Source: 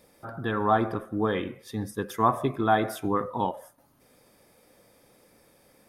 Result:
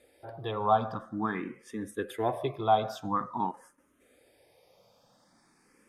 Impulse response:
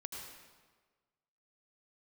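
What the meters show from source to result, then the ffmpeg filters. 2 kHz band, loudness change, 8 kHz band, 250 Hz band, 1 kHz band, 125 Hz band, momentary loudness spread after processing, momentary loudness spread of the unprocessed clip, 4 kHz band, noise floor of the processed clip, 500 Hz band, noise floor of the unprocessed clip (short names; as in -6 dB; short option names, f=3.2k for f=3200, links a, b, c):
-7.0 dB, -4.0 dB, -7.0 dB, -6.5 dB, -2.5 dB, -6.0 dB, 13 LU, 11 LU, -2.5 dB, -67 dBFS, -3.5 dB, -62 dBFS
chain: -filter_complex "[0:a]lowpass=8.8k,lowshelf=f=180:g=-6,asplit=2[a][b];[b]afreqshift=0.48[c];[a][c]amix=inputs=2:normalize=1"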